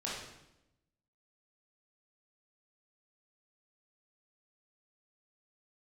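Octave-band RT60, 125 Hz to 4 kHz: 1.2 s, 1.1 s, 0.95 s, 0.85 s, 0.80 s, 0.75 s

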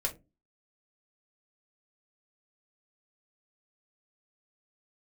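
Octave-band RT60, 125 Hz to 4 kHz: 0.40 s, 0.45 s, 0.30 s, 0.20 s, 0.15 s, 0.15 s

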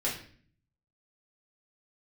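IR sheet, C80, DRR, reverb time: 10.5 dB, -6.0 dB, 0.50 s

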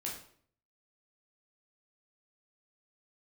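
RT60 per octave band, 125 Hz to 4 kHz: 0.75 s, 0.65 s, 0.60 s, 0.50 s, 0.50 s, 0.45 s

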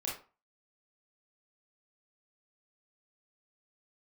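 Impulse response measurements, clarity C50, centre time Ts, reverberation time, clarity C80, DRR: 5.0 dB, 36 ms, 0.35 s, 12.0 dB, -4.5 dB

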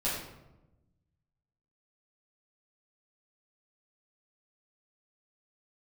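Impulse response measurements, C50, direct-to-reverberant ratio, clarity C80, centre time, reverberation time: 1.5 dB, -8.5 dB, 4.5 dB, 56 ms, 1.0 s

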